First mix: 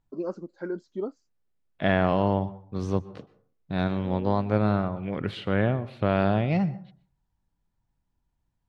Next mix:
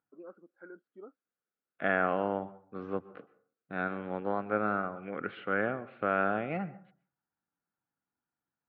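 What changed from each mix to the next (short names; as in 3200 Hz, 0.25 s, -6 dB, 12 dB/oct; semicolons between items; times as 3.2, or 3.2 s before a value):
first voice -11.0 dB; master: add speaker cabinet 380–2200 Hz, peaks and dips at 380 Hz -4 dB, 620 Hz -6 dB, 950 Hz -10 dB, 1400 Hz +7 dB, 1900 Hz -4 dB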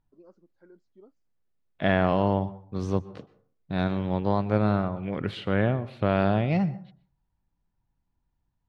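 first voice -11.0 dB; master: remove speaker cabinet 380–2200 Hz, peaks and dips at 380 Hz -4 dB, 620 Hz -6 dB, 950 Hz -10 dB, 1400 Hz +7 dB, 1900 Hz -4 dB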